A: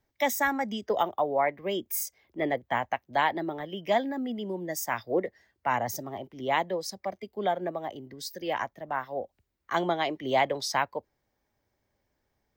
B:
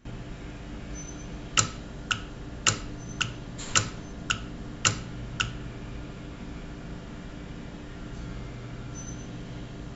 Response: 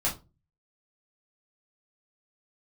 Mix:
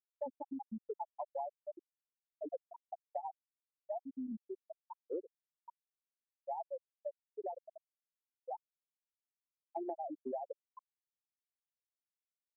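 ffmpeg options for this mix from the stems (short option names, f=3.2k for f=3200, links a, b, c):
-filter_complex "[0:a]aphaser=in_gain=1:out_gain=1:delay=2.1:decay=0.37:speed=0.2:type=triangular,highpass=67,equalizer=f=9k:w=0.45:g=-4.5,volume=-5.5dB,asplit=3[a][b][c];[b]volume=-15dB[d];[1:a]volume=-9dB[e];[c]apad=whole_len=438927[f];[e][f]sidechaincompress=threshold=-44dB:ratio=8:attack=8:release=559[g];[d]aecho=0:1:433:1[h];[a][g][h]amix=inputs=3:normalize=0,lowpass=1.2k,afftfilt=real='re*gte(hypot(re,im),0.178)':imag='im*gte(hypot(re,im),0.178)':win_size=1024:overlap=0.75,acompressor=threshold=-38dB:ratio=5"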